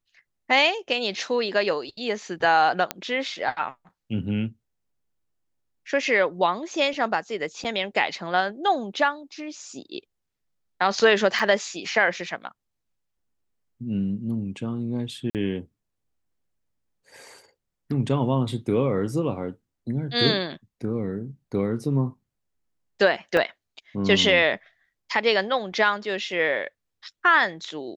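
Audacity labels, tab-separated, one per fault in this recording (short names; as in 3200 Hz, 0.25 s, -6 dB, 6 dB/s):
2.910000	2.910000	pop -9 dBFS
7.640000	7.650000	gap 7.4 ms
11.390000	11.400000	gap 5.8 ms
15.300000	15.350000	gap 48 ms
23.370000	23.370000	gap 2.1 ms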